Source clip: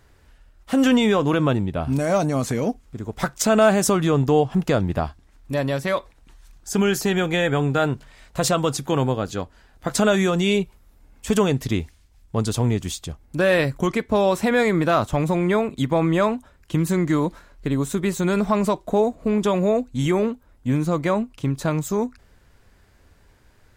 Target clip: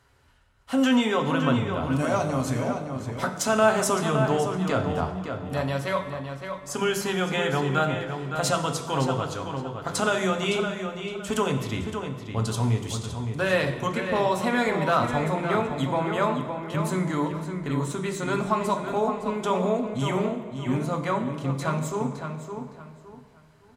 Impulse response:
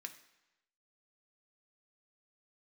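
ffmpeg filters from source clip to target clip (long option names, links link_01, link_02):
-filter_complex "[0:a]asettb=1/sr,asplit=3[link_01][link_02][link_03];[link_01]atrim=end=17.814[link_04];[link_02]atrim=start=17.81:end=18.34,asetpts=PTS-STARTPTS,afade=type=in:duration=0.004:curve=qsin,afade=type=out:start_time=0.526:duration=0.004:curve=qsin,equalizer=frequency=12000:width=3.1:gain=-7.5[link_05];[link_03]atrim=start=18.336[link_06];[link_04][link_05]acrossfade=duration=0.004:curve1=hsin:curve2=qsin[link_07];[link_07][link_06]acrossfade=duration=0.004:curve1=qsin:curve2=hsin,asplit=2[link_08][link_09];[link_09]adelay=563,lowpass=frequency=4200:poles=1,volume=-7dB,asplit=2[link_10][link_11];[link_11]adelay=563,lowpass=frequency=4200:poles=1,volume=0.28,asplit=2[link_12][link_13];[link_13]adelay=563,lowpass=frequency=4200:poles=1,volume=0.28[link_14];[link_08][link_10][link_12][link_14]amix=inputs=4:normalize=0[link_15];[1:a]atrim=start_sample=2205,asetrate=24255,aresample=44100[link_16];[link_15][link_16]afir=irnorm=-1:irlink=0,volume=-2.5dB"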